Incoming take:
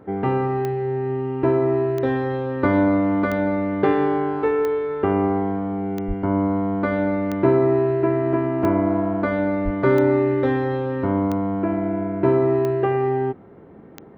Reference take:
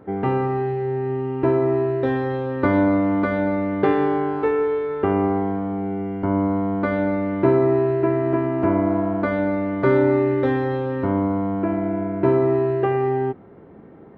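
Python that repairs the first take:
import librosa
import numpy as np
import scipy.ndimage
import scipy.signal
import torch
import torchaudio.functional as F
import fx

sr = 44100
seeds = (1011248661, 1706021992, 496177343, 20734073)

y = fx.fix_declick_ar(x, sr, threshold=10.0)
y = fx.fix_deplosive(y, sr, at_s=(6.07, 9.64))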